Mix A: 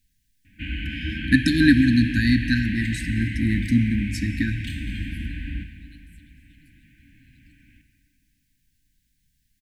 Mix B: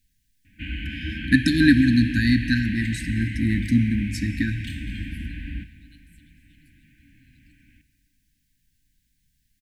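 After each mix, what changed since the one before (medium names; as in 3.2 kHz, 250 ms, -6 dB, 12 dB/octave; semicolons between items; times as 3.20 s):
background: send -6.5 dB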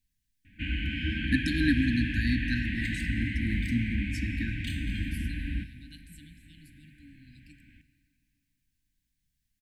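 first voice -10.0 dB; second voice +8.0 dB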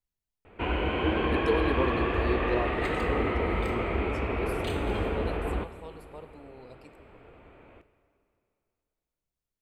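first voice -11.5 dB; second voice: entry -0.65 s; master: remove brick-wall FIR band-stop 310–1500 Hz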